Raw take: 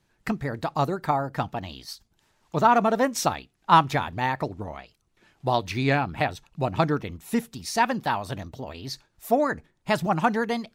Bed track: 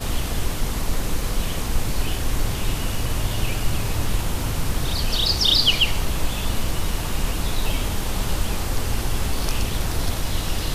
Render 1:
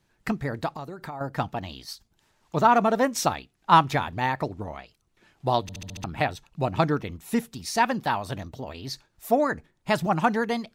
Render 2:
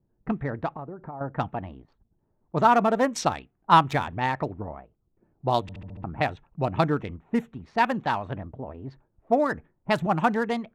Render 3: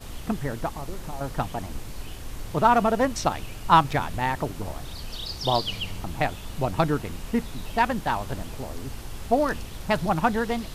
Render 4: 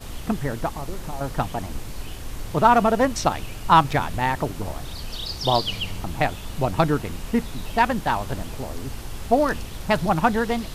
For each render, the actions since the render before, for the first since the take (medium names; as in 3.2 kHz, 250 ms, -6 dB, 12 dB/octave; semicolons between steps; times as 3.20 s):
0.72–1.21 s: compression 5:1, threshold -34 dBFS; 5.62 s: stutter in place 0.07 s, 6 plays
local Wiener filter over 9 samples; level-controlled noise filter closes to 470 Hz, open at -20 dBFS
add bed track -13.5 dB
trim +3 dB; peak limiter -3 dBFS, peak gain reduction 2.5 dB